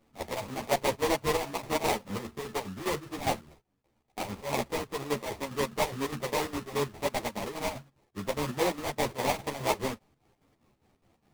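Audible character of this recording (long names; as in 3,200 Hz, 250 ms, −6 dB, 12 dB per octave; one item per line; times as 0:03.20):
chopped level 4.9 Hz, depth 65%, duty 65%
aliases and images of a low sample rate 1,500 Hz, jitter 20%
a shimmering, thickened sound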